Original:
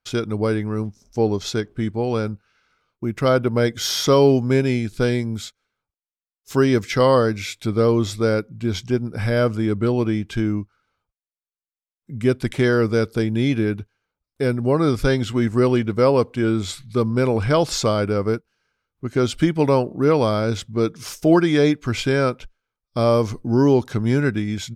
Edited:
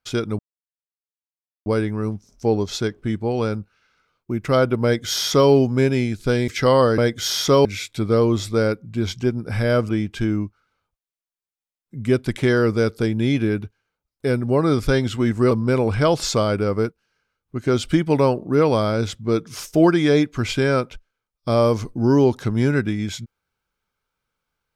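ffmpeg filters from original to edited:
-filter_complex "[0:a]asplit=7[a][b][c][d][e][f][g];[a]atrim=end=0.39,asetpts=PTS-STARTPTS,afade=t=out:st=0.386:d=0.004:c=hsin,apad=pad_dur=1.27[h];[b]atrim=start=0.39:end=5.212,asetpts=PTS-STARTPTS,afade=t=in:d=0.004:c=hsin[i];[c]atrim=start=6.818:end=7.322[j];[d]atrim=start=3.568:end=4.242[k];[e]atrim=start=7.318:end=9.562[l];[f]atrim=start=10.048:end=15.672[m];[g]atrim=start=16.998[n];[h][i]concat=n=2:v=0:a=1[o];[o][j]acrossfade=d=0.004:c1=hsin:c2=hsin[p];[p][k]acrossfade=d=0.004:c1=hsin:c2=hsin[q];[q][l]acrossfade=d=0.004:c1=hsin:c2=hsin[r];[r][m]acrossfade=d=0.004:c1=hsin:c2=hsin[s];[s][n]acrossfade=d=0.004:c1=hsin:c2=hsin"

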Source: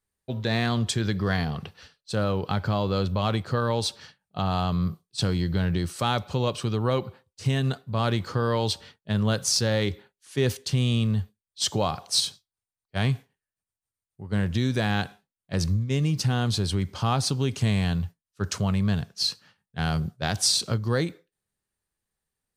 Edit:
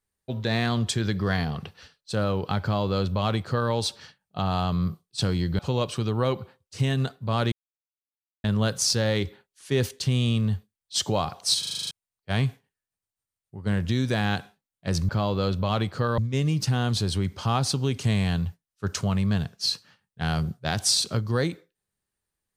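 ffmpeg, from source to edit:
-filter_complex "[0:a]asplit=14[a][b][c][d][e][f][g][h][i][j][k][l][m][n];[a]atrim=end=5.592[o];[b]atrim=start=6.248:end=8.18,asetpts=PTS-STARTPTS,afade=t=out:st=1.928:d=0.004:c=hsin[p];[c]atrim=start=8.18:end=9.1,asetpts=PTS-STARTPTS,volume=0[q];[d]atrim=start=9.1:end=12.292,asetpts=PTS-STARTPTS,afade=t=in:d=0.004:c=hsin[r];[e]atrim=start=12.248:end=12.292[s];[f]atrim=start=12.248:end=12.292[t];[g]atrim=start=12.248:end=12.292[u];[h]atrim=start=12.248:end=12.292[v];[i]atrim=start=12.248:end=12.292[w];[j]atrim=start=12.248:end=12.292[x];[k]atrim=start=12.248:end=12.292[y];[l]atrim=start=12.568:end=15.752[z];[m]atrim=start=2.618:end=3.712[aa];[n]atrim=start=15.748[ab];[p][q][r]concat=n=3:v=0:a=1[ac];[o][ac]acrossfade=d=0.004:c1=hsin:c2=hsin[ad];[ad][s]acrossfade=d=0.004:c1=hsin:c2=hsin[ae];[ae][t]acrossfade=d=0.004:c1=hsin:c2=hsin[af];[af][u]acrossfade=d=0.004:c1=hsin:c2=hsin[ag];[ag][v]acrossfade=d=0.004:c1=hsin:c2=hsin[ah];[ah][w]acrossfade=d=0.004:c1=hsin:c2=hsin[ai];[ai][x]acrossfade=d=0.004:c1=hsin:c2=hsin[aj];[aj][y]acrossfade=d=0.004:c1=hsin:c2=hsin[ak];[ak][z]acrossfade=d=0.004:c1=hsin:c2=hsin[al];[al][aa]acrossfade=d=0.004:c1=hsin:c2=hsin[am];[am][ab]acrossfade=d=0.004:c1=hsin:c2=hsin"

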